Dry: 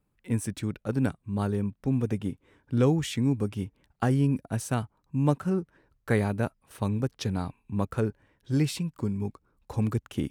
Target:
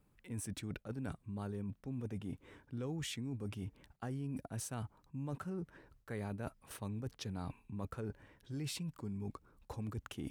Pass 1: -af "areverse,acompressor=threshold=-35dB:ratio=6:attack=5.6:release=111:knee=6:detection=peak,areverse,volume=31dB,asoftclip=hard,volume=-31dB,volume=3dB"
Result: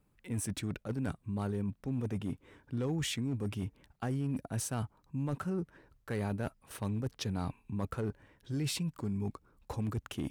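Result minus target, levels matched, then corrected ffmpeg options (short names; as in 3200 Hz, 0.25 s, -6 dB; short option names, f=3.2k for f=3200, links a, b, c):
compressor: peak gain reduction -7 dB
-af "areverse,acompressor=threshold=-43.5dB:ratio=6:attack=5.6:release=111:knee=6:detection=peak,areverse,volume=31dB,asoftclip=hard,volume=-31dB,volume=3dB"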